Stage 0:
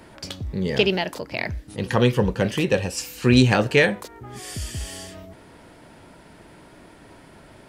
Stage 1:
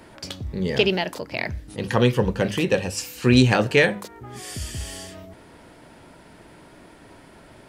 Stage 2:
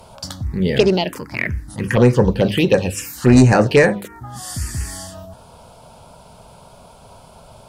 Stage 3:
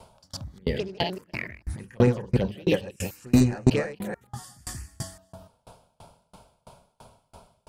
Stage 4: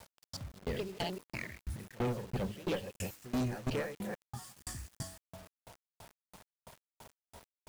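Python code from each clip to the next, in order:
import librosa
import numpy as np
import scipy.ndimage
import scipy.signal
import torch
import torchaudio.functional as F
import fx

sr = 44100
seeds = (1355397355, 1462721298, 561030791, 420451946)

y1 = fx.hum_notches(x, sr, base_hz=50, count=4)
y2 = fx.fold_sine(y1, sr, drive_db=5, ceiling_db=-1.5)
y2 = fx.env_phaser(y2, sr, low_hz=290.0, high_hz=3300.0, full_db=-7.0)
y2 = y2 * librosa.db_to_amplitude(-1.0)
y3 = fx.reverse_delay(y2, sr, ms=148, wet_db=-1)
y3 = fx.tremolo_decay(y3, sr, direction='decaying', hz=3.0, depth_db=33)
y3 = y3 * librosa.db_to_amplitude(-4.0)
y4 = fx.tube_stage(y3, sr, drive_db=24.0, bias=0.3)
y4 = fx.quant_dither(y4, sr, seeds[0], bits=8, dither='none')
y4 = y4 * librosa.db_to_amplitude(-5.5)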